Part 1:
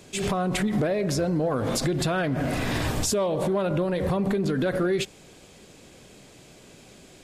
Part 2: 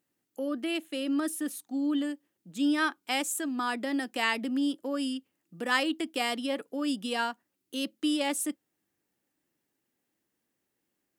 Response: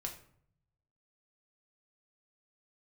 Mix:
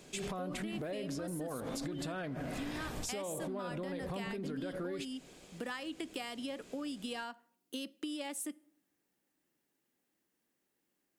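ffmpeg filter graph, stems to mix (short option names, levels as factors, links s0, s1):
-filter_complex "[0:a]volume=0.501[s0];[1:a]acompressor=threshold=0.0251:ratio=2.5,volume=0.794,asplit=2[s1][s2];[s2]volume=0.188[s3];[2:a]atrim=start_sample=2205[s4];[s3][s4]afir=irnorm=-1:irlink=0[s5];[s0][s1][s5]amix=inputs=3:normalize=0,equalizer=f=100:w=4.1:g=-13,acompressor=threshold=0.0141:ratio=6"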